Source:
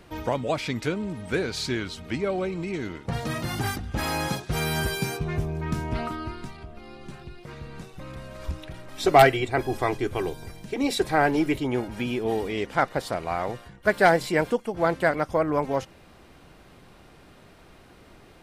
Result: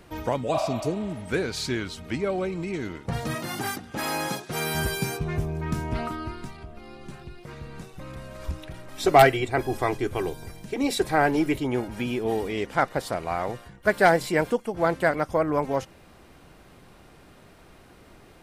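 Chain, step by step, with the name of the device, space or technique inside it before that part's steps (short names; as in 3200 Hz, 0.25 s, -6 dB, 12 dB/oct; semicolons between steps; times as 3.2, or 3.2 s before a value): 0.56–1.23 spectral repair 530–4300 Hz both; 3.35–4.75 HPF 200 Hz 12 dB/oct; exciter from parts (in parallel at -8 dB: HPF 4500 Hz 6 dB/oct + soft clip -22.5 dBFS, distortion -16 dB + HPF 3700 Hz 12 dB/oct)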